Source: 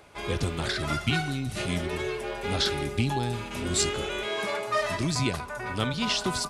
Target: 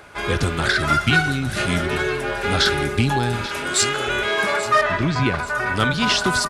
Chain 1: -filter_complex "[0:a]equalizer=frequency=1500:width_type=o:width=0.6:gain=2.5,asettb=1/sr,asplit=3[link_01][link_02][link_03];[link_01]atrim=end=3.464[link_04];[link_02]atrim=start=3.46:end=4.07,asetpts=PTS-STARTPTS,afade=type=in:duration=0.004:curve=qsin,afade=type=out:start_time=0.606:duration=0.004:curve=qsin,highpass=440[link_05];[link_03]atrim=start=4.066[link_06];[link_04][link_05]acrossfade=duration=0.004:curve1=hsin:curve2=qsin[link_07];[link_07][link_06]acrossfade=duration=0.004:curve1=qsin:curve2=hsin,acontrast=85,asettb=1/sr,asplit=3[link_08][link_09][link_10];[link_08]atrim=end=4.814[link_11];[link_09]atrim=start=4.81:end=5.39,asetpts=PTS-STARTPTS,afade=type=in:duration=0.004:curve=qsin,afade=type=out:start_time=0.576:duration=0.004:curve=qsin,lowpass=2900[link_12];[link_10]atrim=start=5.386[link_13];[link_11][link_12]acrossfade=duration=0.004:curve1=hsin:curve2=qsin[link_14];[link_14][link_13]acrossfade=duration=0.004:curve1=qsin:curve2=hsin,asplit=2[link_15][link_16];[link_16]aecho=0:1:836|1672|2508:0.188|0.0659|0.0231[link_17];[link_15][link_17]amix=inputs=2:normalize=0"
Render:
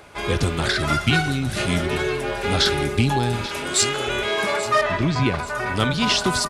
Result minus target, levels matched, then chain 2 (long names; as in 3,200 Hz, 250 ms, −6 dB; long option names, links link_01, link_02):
2,000 Hz band −3.0 dB
-filter_complex "[0:a]equalizer=frequency=1500:width_type=o:width=0.6:gain=8.5,asettb=1/sr,asplit=3[link_01][link_02][link_03];[link_01]atrim=end=3.464[link_04];[link_02]atrim=start=3.46:end=4.07,asetpts=PTS-STARTPTS,afade=type=in:duration=0.004:curve=qsin,afade=type=out:start_time=0.606:duration=0.004:curve=qsin,highpass=440[link_05];[link_03]atrim=start=4.066[link_06];[link_04][link_05]acrossfade=duration=0.004:curve1=hsin:curve2=qsin[link_07];[link_07][link_06]acrossfade=duration=0.004:curve1=qsin:curve2=hsin,acontrast=85,asettb=1/sr,asplit=3[link_08][link_09][link_10];[link_08]atrim=end=4.814[link_11];[link_09]atrim=start=4.81:end=5.39,asetpts=PTS-STARTPTS,afade=type=in:duration=0.004:curve=qsin,afade=type=out:start_time=0.576:duration=0.004:curve=qsin,lowpass=2900[link_12];[link_10]atrim=start=5.386[link_13];[link_11][link_12]acrossfade=duration=0.004:curve1=hsin:curve2=qsin[link_14];[link_14][link_13]acrossfade=duration=0.004:curve1=qsin:curve2=hsin,asplit=2[link_15][link_16];[link_16]aecho=0:1:836|1672|2508:0.188|0.0659|0.0231[link_17];[link_15][link_17]amix=inputs=2:normalize=0"